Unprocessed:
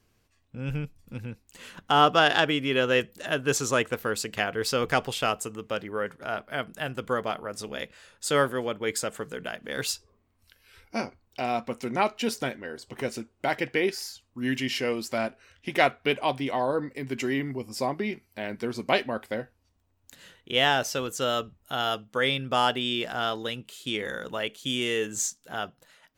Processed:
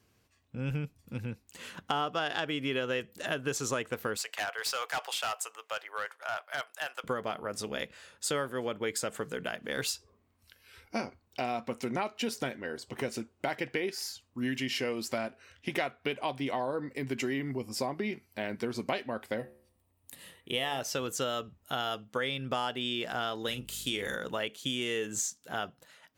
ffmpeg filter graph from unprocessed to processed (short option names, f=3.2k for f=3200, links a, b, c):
-filter_complex "[0:a]asettb=1/sr,asplit=3[a][b][c];[a]atrim=end=4.174[d];[b]atrim=start=4.17:end=7.04,asetpts=PTS-STARTPTS,afade=t=in:d=0.004:c=qsin,afade=t=out:st=2.866:d=0.004:c=qsin,highpass=f=690:w=0.5412,highpass=f=690:w=1.3066,asoftclip=type=hard:threshold=-26.5dB[e];[c]atrim=start=7.036[f];[d][e]acrossfade=d=0.004:c1=hsin:c2=qsin[g];[g][f]acrossfade=d=0.004:c1=qsin:c2=hsin,asettb=1/sr,asplit=3[h][i][j];[h]atrim=end=19.384[k];[i]atrim=start=19.38:end=20.81,asetpts=PTS-STARTPTS,afade=t=in:d=0.004:c=qsin,afade=t=out:st=1.426:d=0.004:c=qsin,asuperstop=centerf=1500:order=4:qfactor=5.9,highshelf=f=7.9k:t=q:w=3:g=6,bandreject=f=73.05:t=h:w=4,bandreject=f=146.1:t=h:w=4,bandreject=f=219.15:t=h:w=4,bandreject=f=292.2:t=h:w=4,bandreject=f=365.25:t=h:w=4,bandreject=f=438.3:t=h:w=4,bandreject=f=511.35:t=h:w=4,bandreject=f=584.4:t=h:w=4,bandreject=f=657.45:t=h:w=4,bandreject=f=730.5:t=h:w=4,bandreject=f=803.55:t=h:w=4,bandreject=f=876.6:t=h:w=4,bandreject=f=949.65:t=h:w=4,bandreject=f=1.0227k:t=h:w=4,bandreject=f=1.09575k:t=h:w=4,bandreject=f=1.1688k:t=h:w=4,bandreject=f=1.24185k:t=h:w=4,bandreject=f=1.3149k:t=h:w=4,bandreject=f=1.38795k:t=h:w=4,bandreject=f=1.461k:t=h:w=4,bandreject=f=1.53405k:t=h:w=4,bandreject=f=1.6071k:t=h:w=4,bandreject=f=1.68015k:t=h:w=4,bandreject=f=1.7532k:t=h:w=4,bandreject=f=1.82625k:t=h:w=4,bandreject=f=1.8993k:t=h:w=4,bandreject=f=1.97235k:t=h:w=4,bandreject=f=2.0454k:t=h:w=4,bandreject=f=2.11845k:t=h:w=4,bandreject=f=2.1915k:t=h:w=4,bandreject=f=2.26455k:t=h:w=4,bandreject=f=2.3376k:t=h:w=4,bandreject=f=2.41065k:t=h:w=4,bandreject=f=2.4837k:t=h:w=4[l];[j]atrim=start=20.806[m];[k][l]acrossfade=d=0.004:c1=hsin:c2=qsin[n];[n][m]acrossfade=d=0.004:c1=qsin:c2=hsin,asettb=1/sr,asplit=3[o][p][q];[o]atrim=end=23.474[r];[p]atrim=start=23.47:end=24.16,asetpts=PTS-STARTPTS,afade=t=in:d=0.004:c=qsin,afade=t=out:st=0.686:d=0.004:c=qsin,highshelf=f=6k:g=11.5,asplit=2[s][t];[t]adelay=40,volume=-11dB[u];[s][u]amix=inputs=2:normalize=0,atrim=end_sample=30429,aeval=exprs='val(0)+0.00316*(sin(2*PI*50*n/s)+sin(2*PI*2*50*n/s)/2+sin(2*PI*3*50*n/s)/3+sin(2*PI*4*50*n/s)/4+sin(2*PI*5*50*n/s)/5)':c=same[v];[q]atrim=start=24.156[w];[r][v]acrossfade=d=0.004:c1=hsin:c2=qsin[x];[x][w]acrossfade=d=0.004:c1=qsin:c2=hsin,highpass=58,acompressor=threshold=-29dB:ratio=6"